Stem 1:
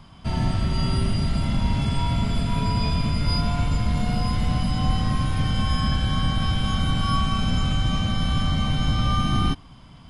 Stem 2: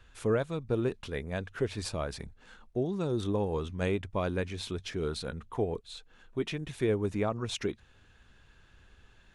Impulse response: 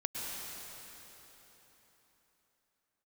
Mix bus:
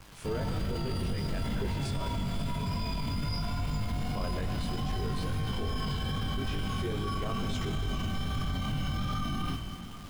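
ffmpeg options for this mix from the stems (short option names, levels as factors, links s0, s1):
-filter_complex "[0:a]flanger=delay=3:depth=9.7:regen=-54:speed=1.4:shape=sinusoidal,acrusher=bits=7:mix=0:aa=0.000001,volume=1.06,asplit=2[s0][s1];[s1]volume=0.224[s2];[1:a]volume=0.668,asplit=3[s3][s4][s5];[s3]atrim=end=2.08,asetpts=PTS-STARTPTS,afade=t=out:st=2.076:d=0.004:c=hsin[s6];[s4]atrim=start=2.08:end=3.97,asetpts=PTS-STARTPTS,volume=0[s7];[s5]atrim=start=3.97,asetpts=PTS-STARTPTS,afade=t=in:d=0.004:c=hsin[s8];[s6][s7][s8]concat=n=3:v=0:a=1,asplit=2[s9][s10];[s10]volume=0.668[s11];[2:a]atrim=start_sample=2205[s12];[s2][s11]amix=inputs=2:normalize=0[s13];[s13][s12]afir=irnorm=-1:irlink=0[s14];[s0][s9][s14]amix=inputs=3:normalize=0,flanger=delay=19.5:depth=2.7:speed=2.4,alimiter=level_in=1.06:limit=0.0631:level=0:latency=1:release=24,volume=0.944"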